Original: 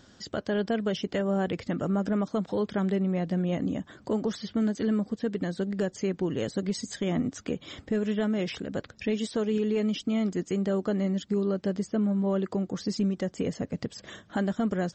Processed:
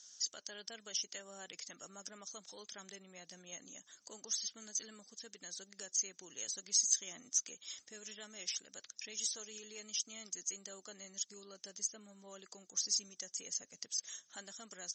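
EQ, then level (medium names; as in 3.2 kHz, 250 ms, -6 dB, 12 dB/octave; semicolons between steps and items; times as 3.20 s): band-pass filter 6.2 kHz, Q 8.8; +15.5 dB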